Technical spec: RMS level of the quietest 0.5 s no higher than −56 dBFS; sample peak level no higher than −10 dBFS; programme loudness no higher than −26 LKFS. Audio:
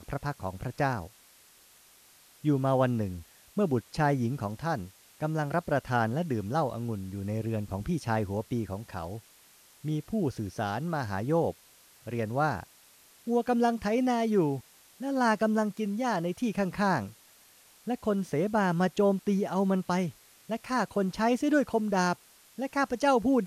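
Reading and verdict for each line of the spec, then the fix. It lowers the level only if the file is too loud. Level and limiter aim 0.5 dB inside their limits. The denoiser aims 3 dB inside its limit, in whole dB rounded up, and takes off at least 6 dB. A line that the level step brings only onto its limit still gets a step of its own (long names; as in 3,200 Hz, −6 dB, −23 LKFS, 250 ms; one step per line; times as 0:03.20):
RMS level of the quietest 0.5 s −58 dBFS: in spec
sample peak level −13.5 dBFS: in spec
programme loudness −29.5 LKFS: in spec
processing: no processing needed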